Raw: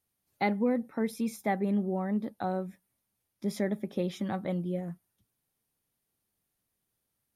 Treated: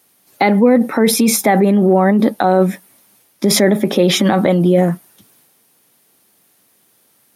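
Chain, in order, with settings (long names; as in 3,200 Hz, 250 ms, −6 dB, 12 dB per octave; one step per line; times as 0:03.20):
transient designer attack 0 dB, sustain +4 dB
in parallel at +1 dB: compressor whose output falls as the input rises −33 dBFS, ratio −0.5
on the sum: high-pass filter 220 Hz 12 dB per octave
boost into a limiter +18 dB
level −1 dB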